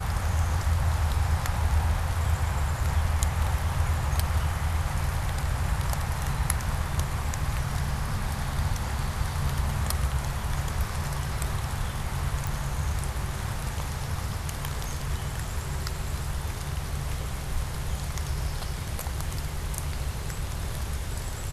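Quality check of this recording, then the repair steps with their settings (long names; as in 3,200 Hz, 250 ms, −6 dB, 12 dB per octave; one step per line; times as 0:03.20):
0:12.47: click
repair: click removal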